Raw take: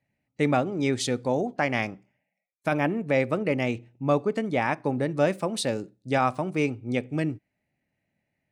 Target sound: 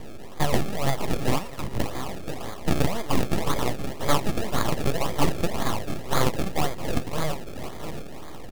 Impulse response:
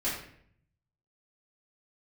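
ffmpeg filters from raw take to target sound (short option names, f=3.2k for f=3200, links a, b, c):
-filter_complex "[0:a]aeval=exprs='val(0)+0.5*0.0282*sgn(val(0))':c=same,equalizer=f=96:w=0.55:g=-8,asplit=2[a][b];[b]adelay=683,lowpass=f=1.4k:p=1,volume=-9dB,asplit=2[c][d];[d]adelay=683,lowpass=f=1.4k:p=1,volume=0.16[e];[a][c][e]amix=inputs=3:normalize=0,acrusher=samples=31:mix=1:aa=0.000001:lfo=1:lforange=31:lforate=1.9,asettb=1/sr,asplit=3[f][g][h];[f]atrim=end=1.384[i];[g]atrim=start=1.38:end=1.8,asetpts=PTS-STARTPTS,afade=t=in:d=0.004:c=qsin,afade=t=out:st=0.416:d=0.004:c=qsin,acrossover=split=150[j][k];[k]acompressor=threshold=-38dB:ratio=4[l];[j][l]amix=inputs=2:normalize=0[m];[h]atrim=start=1.796[n];[i][m]acrossfade=d=0.004:c1=hsin:c2=qsin[o];[o][n]acrossfade=d=0.004:c1=qsin:c2=hsin,aeval=exprs='abs(val(0))':c=same,bandreject=f=1.5k:w=7.6,volume=4.5dB"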